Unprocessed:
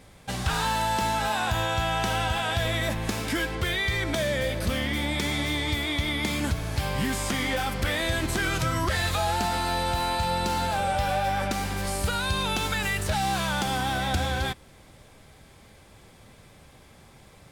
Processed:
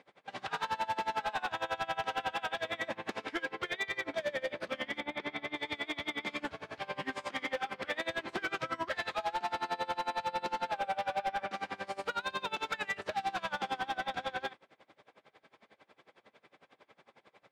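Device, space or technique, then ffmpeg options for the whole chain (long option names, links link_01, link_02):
helicopter radio: -filter_complex "[0:a]asettb=1/sr,asplit=3[link_01][link_02][link_03];[link_01]atrim=end=5.004[link_04];[link_02]atrim=start=5:end=5.56,asetpts=PTS-STARTPTS,afade=type=in:duration=0.004:curve=qsin,afade=type=out:start_time=0.556:duration=0.004:curve=qsin,equalizer=frequency=7600:width_type=o:width=1.3:gain=-15[link_05];[link_03]atrim=start=5.556[link_06];[link_04][link_05]acrossfade=duration=0.004:curve1=hsin:curve2=qsin[link_07];[link_07][link_06]acrossfade=duration=0.004:curve1=qsin:curve2=hsin,highpass=380,lowpass=2900,aeval=exprs='val(0)*pow(10,-25*(0.5-0.5*cos(2*PI*11*n/s))/20)':channel_layout=same,asoftclip=type=hard:threshold=-27.5dB"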